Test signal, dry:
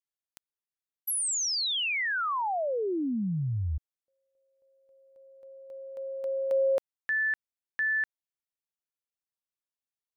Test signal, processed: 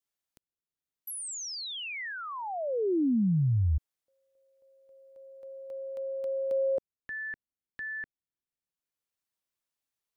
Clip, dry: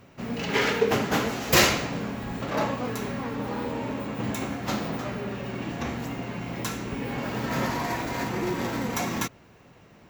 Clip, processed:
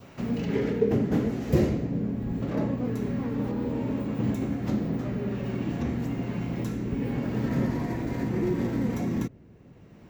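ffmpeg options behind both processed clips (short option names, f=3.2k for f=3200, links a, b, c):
-filter_complex "[0:a]adynamicequalizer=threshold=0.00794:dfrequency=1900:dqfactor=2.5:tfrequency=1900:tqfactor=2.5:attack=5:release=100:ratio=0.375:range=2.5:mode=boostabove:tftype=bell,acrossover=split=440[a][b];[b]acompressor=threshold=-42dB:ratio=6:attack=0.15:release=842:detection=rms[c];[a][c]amix=inputs=2:normalize=0,volume=4.5dB"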